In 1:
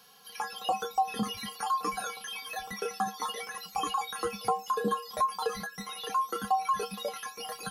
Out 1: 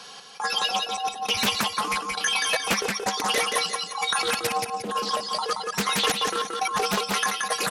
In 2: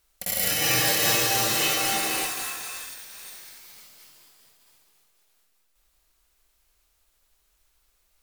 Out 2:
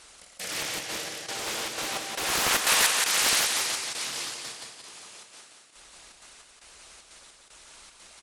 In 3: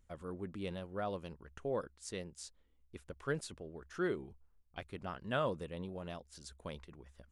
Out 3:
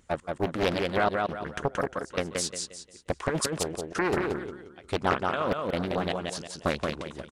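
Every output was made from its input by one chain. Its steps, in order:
high-pass 190 Hz 6 dB/octave; harmonic-percussive split harmonic -7 dB; compressor with a negative ratio -42 dBFS, ratio -1; trance gate "xx..xxxx." 152 bpm -24 dB; on a send: feedback delay 177 ms, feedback 35%, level -3.5 dB; on the sum: resampled via 22.05 kHz; loudspeaker Doppler distortion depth 0.74 ms; peak normalisation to -9 dBFS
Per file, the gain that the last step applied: +16.5 dB, +15.0 dB, +18.0 dB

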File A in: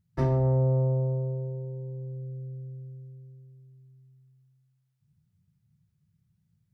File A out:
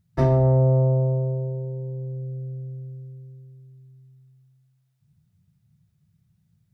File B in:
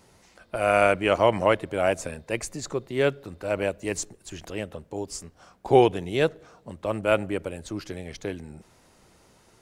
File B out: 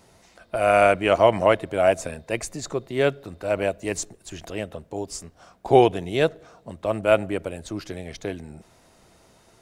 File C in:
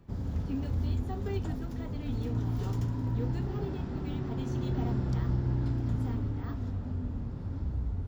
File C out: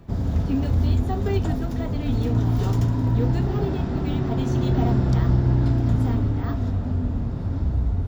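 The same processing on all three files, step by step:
small resonant body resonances 670/3700 Hz, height 7 dB; normalise loudness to -23 LUFS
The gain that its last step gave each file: +5.5 dB, +1.5 dB, +10.5 dB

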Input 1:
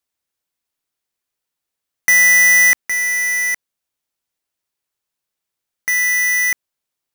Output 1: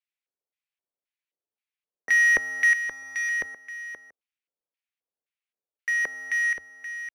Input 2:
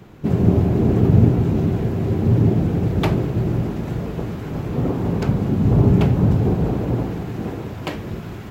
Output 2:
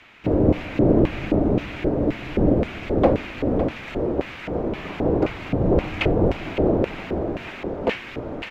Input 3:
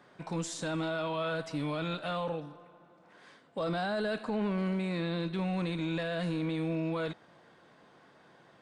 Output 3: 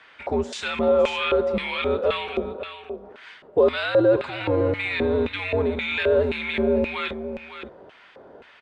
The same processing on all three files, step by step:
delay 559 ms -10.5 dB; LFO band-pass square 1.9 Hz 580–2500 Hz; frequency shift -93 Hz; normalise loudness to -23 LUFS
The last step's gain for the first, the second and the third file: -3.5 dB, +12.0 dB, +19.5 dB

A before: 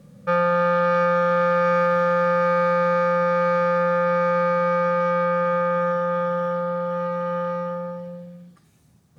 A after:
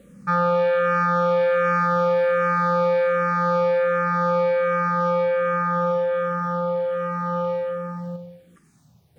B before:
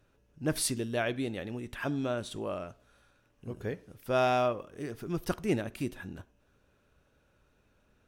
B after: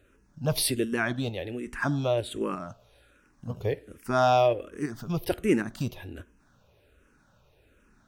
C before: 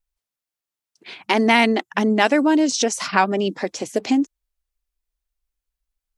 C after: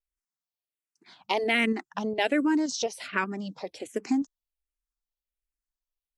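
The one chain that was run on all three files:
in parallel at -1 dB: level held to a coarse grid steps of 18 dB; on the sum: barber-pole phaser -1.3 Hz; peak normalisation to -12 dBFS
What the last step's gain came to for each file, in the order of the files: +1.5 dB, +5.0 dB, -10.5 dB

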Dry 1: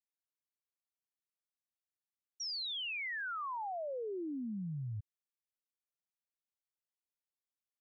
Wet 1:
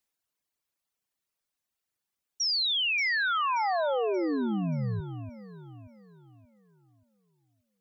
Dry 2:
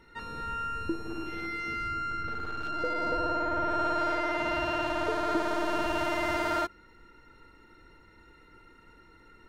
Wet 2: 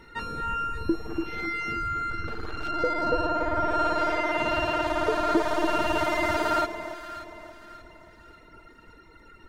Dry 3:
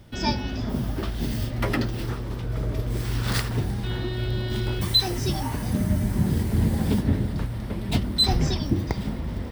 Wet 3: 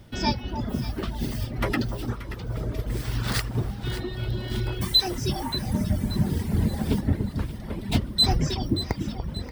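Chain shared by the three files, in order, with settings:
reverb removal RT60 1.7 s; echo whose repeats swap between lows and highs 290 ms, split 1.1 kHz, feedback 61%, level -8 dB; normalise loudness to -27 LUFS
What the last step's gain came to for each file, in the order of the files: +12.0 dB, +7.0 dB, +0.5 dB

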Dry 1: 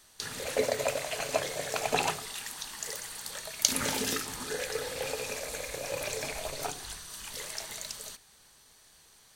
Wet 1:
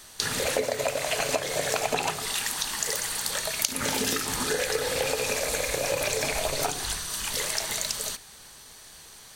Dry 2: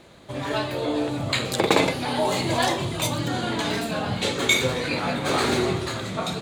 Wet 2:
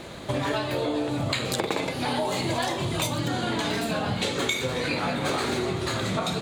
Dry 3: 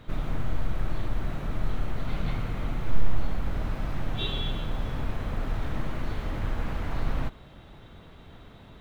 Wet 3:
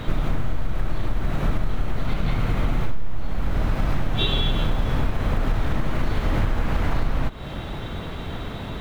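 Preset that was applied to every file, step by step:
compression 10:1, threshold -34 dBFS; normalise loudness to -27 LUFS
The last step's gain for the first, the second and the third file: +11.0 dB, +10.0 dB, +17.5 dB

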